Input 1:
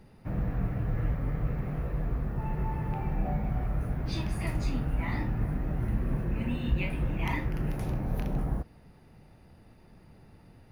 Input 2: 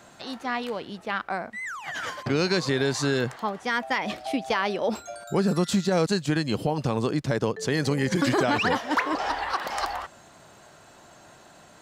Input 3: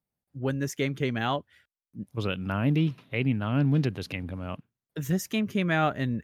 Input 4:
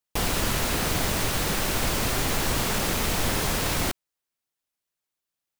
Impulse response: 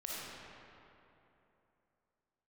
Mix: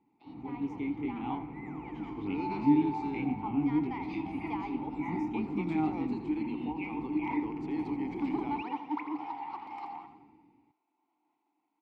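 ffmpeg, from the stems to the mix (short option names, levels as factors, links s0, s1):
-filter_complex "[0:a]dynaudnorm=f=100:g=11:m=3.55,acompressor=threshold=0.1:ratio=2.5,volume=0.501[s0];[1:a]agate=range=0.0224:threshold=0.00891:ratio=3:detection=peak,highpass=220,equalizer=f=6300:w=2.7:g=-5,volume=0.355,asplit=2[s1][s2];[s2]volume=0.299[s3];[2:a]lowshelf=f=210:g=10.5,flanger=delay=20:depth=5.7:speed=1.8,volume=0.708,asplit=2[s4][s5];[s5]volume=0.141[s6];[s3][s6]amix=inputs=2:normalize=0,aecho=0:1:83|166|249|332|415|498|581:1|0.48|0.23|0.111|0.0531|0.0255|0.0122[s7];[s0][s1][s4][s7]amix=inputs=4:normalize=0,equalizer=f=830:t=o:w=2.8:g=5.5,dynaudnorm=f=640:g=3:m=1.58,asplit=3[s8][s9][s10];[s8]bandpass=f=300:t=q:w=8,volume=1[s11];[s9]bandpass=f=870:t=q:w=8,volume=0.501[s12];[s10]bandpass=f=2240:t=q:w=8,volume=0.355[s13];[s11][s12][s13]amix=inputs=3:normalize=0"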